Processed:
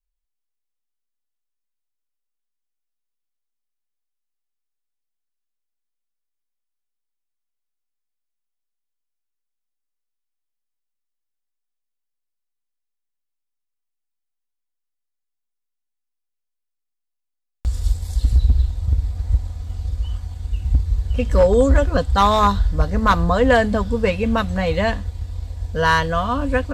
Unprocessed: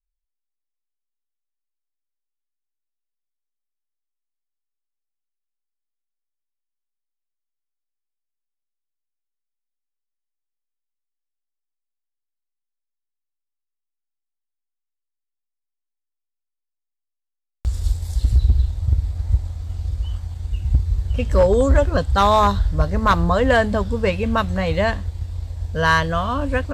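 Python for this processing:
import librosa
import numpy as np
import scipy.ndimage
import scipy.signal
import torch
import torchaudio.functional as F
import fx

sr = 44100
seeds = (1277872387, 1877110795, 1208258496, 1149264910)

y = x + 0.4 * np.pad(x, (int(4.1 * sr / 1000.0), 0))[:len(x)]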